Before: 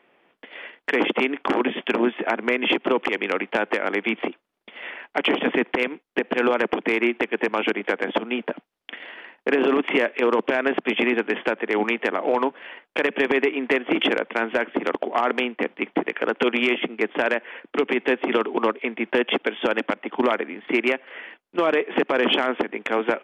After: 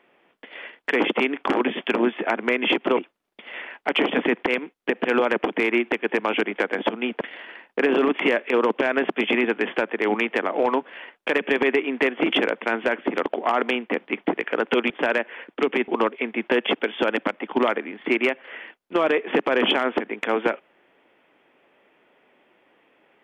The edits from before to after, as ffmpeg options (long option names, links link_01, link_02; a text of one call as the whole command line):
ffmpeg -i in.wav -filter_complex "[0:a]asplit=5[link_01][link_02][link_03][link_04][link_05];[link_01]atrim=end=2.972[link_06];[link_02]atrim=start=4.258:end=8.502[link_07];[link_03]atrim=start=8.898:end=16.592[link_08];[link_04]atrim=start=17.058:end=18.042[link_09];[link_05]atrim=start=18.508[link_10];[link_06][link_07]acrossfade=duration=0.004:curve1=hsin:curve2=hsin[link_11];[link_11][link_08]acrossfade=duration=0.004:curve1=hsin:curve2=hsin[link_12];[link_12][link_09]acrossfade=duration=0.004:curve1=hsin:curve2=hsin[link_13];[link_13][link_10]acrossfade=duration=0.004:curve1=hsin:curve2=hsin" out.wav